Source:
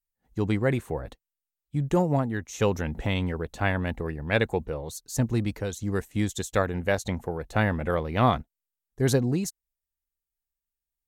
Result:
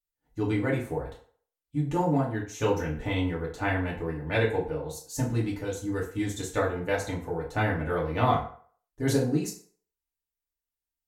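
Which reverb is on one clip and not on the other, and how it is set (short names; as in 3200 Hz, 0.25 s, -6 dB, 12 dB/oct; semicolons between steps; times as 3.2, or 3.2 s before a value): FDN reverb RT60 0.5 s, low-frequency decay 0.75×, high-frequency decay 0.7×, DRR -5.5 dB; gain -8 dB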